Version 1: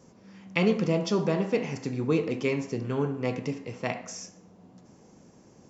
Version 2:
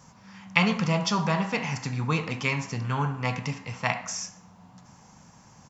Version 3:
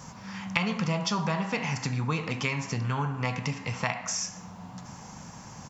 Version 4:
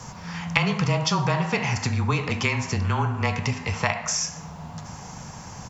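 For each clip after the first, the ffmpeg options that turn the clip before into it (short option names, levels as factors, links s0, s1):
-af "firequalizer=gain_entry='entry(140,0);entry(360,-17);entry(880,5);entry(2200,2)':delay=0.05:min_phase=1,volume=1.78"
-af "acompressor=threshold=0.0126:ratio=3,volume=2.66"
-af "afreqshift=-23,volume=1.88"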